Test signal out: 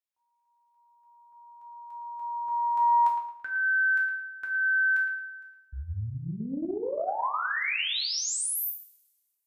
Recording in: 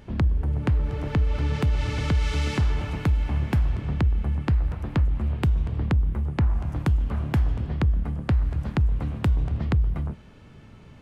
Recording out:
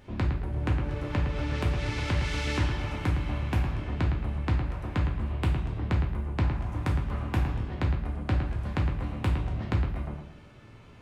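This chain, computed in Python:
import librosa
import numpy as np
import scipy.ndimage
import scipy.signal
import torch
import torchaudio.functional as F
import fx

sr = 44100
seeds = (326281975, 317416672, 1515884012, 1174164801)

y = fx.low_shelf(x, sr, hz=290.0, db=-3.5)
y = fx.echo_wet_lowpass(y, sr, ms=111, feedback_pct=31, hz=3300.0, wet_db=-7)
y = fx.rev_double_slope(y, sr, seeds[0], early_s=0.47, late_s=1.6, knee_db=-27, drr_db=-1.5)
y = fx.doppler_dist(y, sr, depth_ms=0.22)
y = F.gain(torch.from_numpy(y), -4.0).numpy()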